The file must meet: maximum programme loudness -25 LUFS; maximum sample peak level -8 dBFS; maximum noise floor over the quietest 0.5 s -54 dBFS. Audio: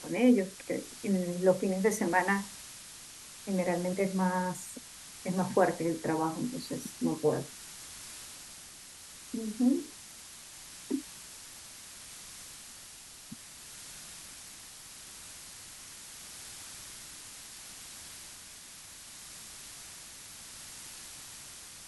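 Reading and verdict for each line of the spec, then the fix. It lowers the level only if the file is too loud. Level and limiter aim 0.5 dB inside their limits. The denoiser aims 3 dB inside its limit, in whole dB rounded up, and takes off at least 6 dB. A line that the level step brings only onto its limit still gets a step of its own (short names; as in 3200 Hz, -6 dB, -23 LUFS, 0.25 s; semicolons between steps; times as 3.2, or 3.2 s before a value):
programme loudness -34.0 LUFS: OK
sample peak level -13.0 dBFS: OK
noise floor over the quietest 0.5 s -50 dBFS: fail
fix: denoiser 7 dB, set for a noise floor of -50 dBFS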